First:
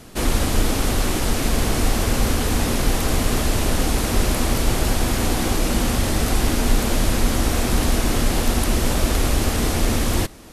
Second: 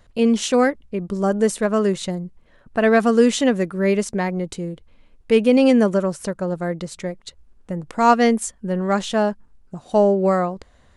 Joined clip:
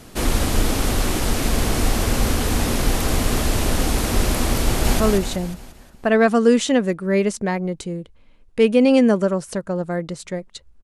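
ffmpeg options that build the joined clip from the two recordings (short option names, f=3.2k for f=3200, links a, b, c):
-filter_complex "[0:a]apad=whole_dur=10.83,atrim=end=10.83,atrim=end=5.002[a];[1:a]atrim=start=1.718:end=7.55[b];[a][b]acrossfade=d=0.004:c1=hsin:c2=hsin,asplit=2[c][d];[d]afade=t=in:st=4.67:d=0.01,afade=t=out:st=5:d=0.01,aecho=0:1:180|360|540|720|900|1080|1260:0.707946|0.353973|0.176986|0.0884932|0.0442466|0.0221233|0.0110617[e];[c][e]amix=inputs=2:normalize=0"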